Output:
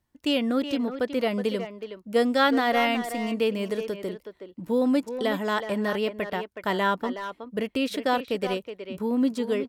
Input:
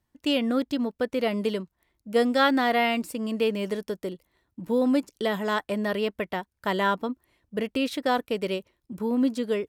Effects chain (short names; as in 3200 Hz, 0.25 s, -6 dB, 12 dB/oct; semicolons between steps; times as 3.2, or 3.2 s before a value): speakerphone echo 0.37 s, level -8 dB